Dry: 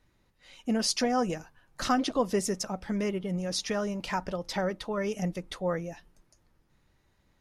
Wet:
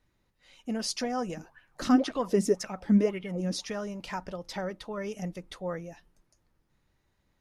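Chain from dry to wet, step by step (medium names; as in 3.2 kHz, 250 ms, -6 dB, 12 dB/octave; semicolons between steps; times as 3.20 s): 1.37–3.65 s: sweeping bell 1.9 Hz 210–2400 Hz +17 dB; trim -4.5 dB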